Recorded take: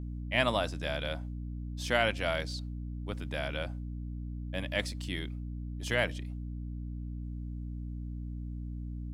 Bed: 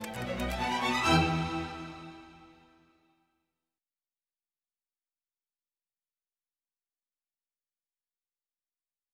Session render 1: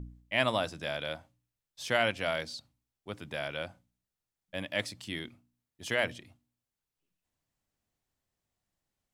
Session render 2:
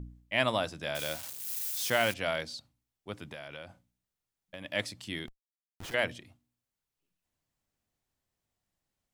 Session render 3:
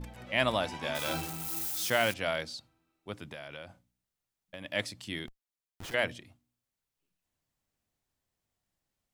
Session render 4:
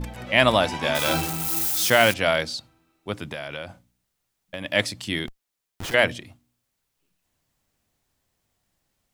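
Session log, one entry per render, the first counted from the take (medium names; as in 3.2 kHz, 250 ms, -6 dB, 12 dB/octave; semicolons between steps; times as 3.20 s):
de-hum 60 Hz, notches 5
0.95–2.14 s: zero-crossing glitches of -28.5 dBFS; 3.29–4.65 s: compression, threshold -39 dBFS; 5.27–5.94 s: Schmitt trigger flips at -43.5 dBFS
add bed -12 dB
trim +10.5 dB; peak limiter -2 dBFS, peak gain reduction 1.5 dB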